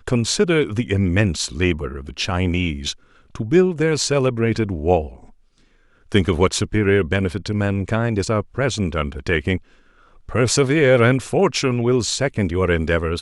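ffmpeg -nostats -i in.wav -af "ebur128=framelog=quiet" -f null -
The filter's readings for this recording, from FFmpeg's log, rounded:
Integrated loudness:
  I:         -19.5 LUFS
  Threshold: -30.1 LUFS
Loudness range:
  LRA:         3.0 LU
  Threshold: -40.3 LUFS
  LRA low:   -21.5 LUFS
  LRA high:  -18.6 LUFS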